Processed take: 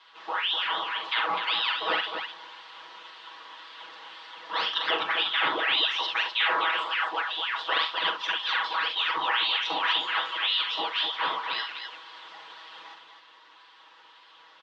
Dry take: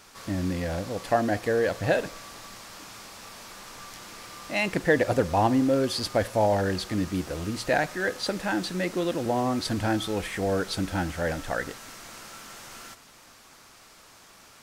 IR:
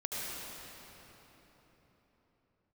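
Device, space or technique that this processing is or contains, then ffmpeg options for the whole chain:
voice changer toy: -filter_complex "[0:a]aeval=exprs='val(0)*sin(2*PI*2000*n/s+2000*0.75/1.9*sin(2*PI*1.9*n/s))':c=same,highpass=590,equalizer=f=670:t=q:w=4:g=-7,equalizer=f=1000:t=q:w=4:g=9,equalizer=f=2300:t=q:w=4:g=-8,equalizer=f=3300:t=q:w=4:g=4,lowpass=f=3600:w=0.5412,lowpass=f=3600:w=1.3066,asettb=1/sr,asplit=3[s0][s1][s2];[s0]atrim=end=6.304[s3];[s1]atrim=start=6.3:end=7.04,asetpts=PTS-STARTPTS,afade=t=in:d=0.004:c=qsin,afade=t=out:st=0.736:d=0.004:c=qsin,highpass=330[s4];[s2]atrim=start=7.036[s5];[s3][s4]acrossfade=d=0.004:c1=hsin:c2=qsin[s6];[s6][s5]acrossfade=d=0.004:c1=qsin:c2=hsin,afftfilt=real='re*lt(hypot(re,im),0.251)':imag='im*lt(hypot(re,im),0.251)':win_size=1024:overlap=0.75,aecho=1:1:6.2:0.87,aecho=1:1:43|69|252:0.447|0.266|0.473"

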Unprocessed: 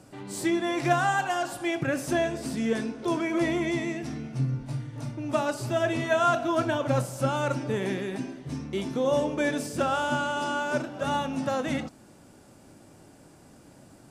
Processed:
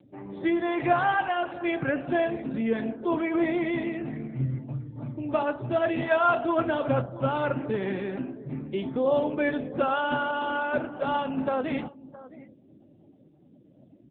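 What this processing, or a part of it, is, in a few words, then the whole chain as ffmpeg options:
mobile call with aggressive noise cancelling: -filter_complex "[0:a]asettb=1/sr,asplit=3[s0][s1][s2];[s0]atrim=end=10.124[s3];[s1]atrim=start=10.12:end=10.64,asetpts=PTS-STARTPTS,afade=t=in:d=0.004:c=qsin,afade=t=out:st=0.516:d=0.004:c=qsin,highshelf=f=3300:g=-2[s4];[s2]atrim=start=10.636[s5];[s3][s4]acrossfade=d=0.004:c1=hsin:c2=qsin[s6];[s6][s5]acrossfade=d=0.004:c1=qsin:c2=hsin,highpass=f=120:p=1,aecho=1:1:664:0.126,afftdn=nr=27:nf=-47,volume=1.19" -ar 8000 -c:a libopencore_amrnb -b:a 7950

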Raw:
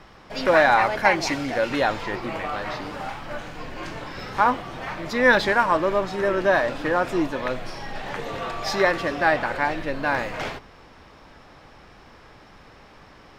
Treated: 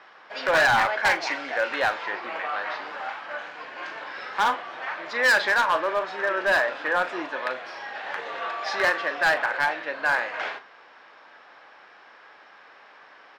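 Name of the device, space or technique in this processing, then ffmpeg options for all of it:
megaphone: -filter_complex "[0:a]highpass=630,lowpass=3800,equalizer=f=1600:t=o:w=0.31:g=5.5,asoftclip=type=hard:threshold=0.158,asplit=2[s0][s1];[s1]adelay=39,volume=0.237[s2];[s0][s2]amix=inputs=2:normalize=0"

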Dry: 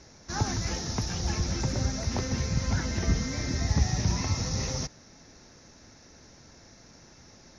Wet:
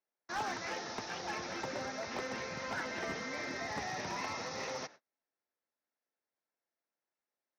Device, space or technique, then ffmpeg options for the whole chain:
walkie-talkie: -af "highpass=510,lowpass=2800,asoftclip=type=hard:threshold=0.0224,agate=range=0.0141:threshold=0.00224:ratio=16:detection=peak,volume=1.12"

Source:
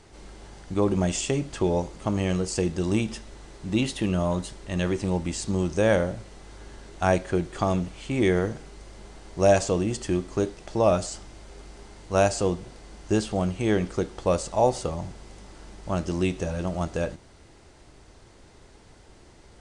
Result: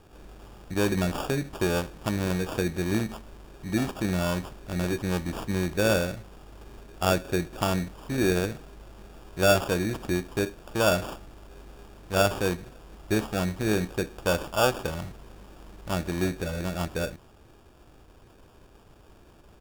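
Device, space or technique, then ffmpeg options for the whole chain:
crushed at another speed: -af "asetrate=35280,aresample=44100,acrusher=samples=27:mix=1:aa=0.000001,asetrate=55125,aresample=44100,volume=0.794"

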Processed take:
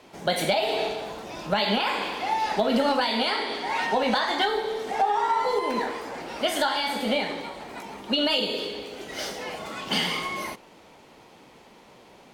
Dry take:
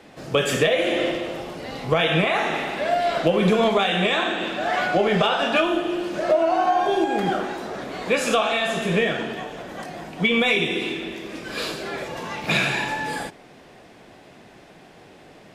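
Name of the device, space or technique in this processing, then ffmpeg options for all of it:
nightcore: -af "asetrate=55566,aresample=44100,volume=0.631"

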